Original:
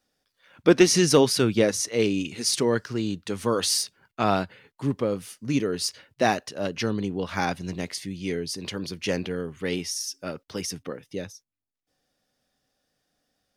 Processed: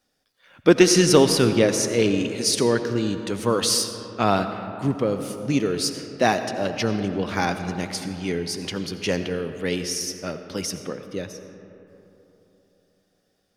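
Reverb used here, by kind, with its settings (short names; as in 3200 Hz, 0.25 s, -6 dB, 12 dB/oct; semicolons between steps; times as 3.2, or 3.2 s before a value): digital reverb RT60 3.4 s, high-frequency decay 0.4×, pre-delay 45 ms, DRR 8.5 dB; gain +2.5 dB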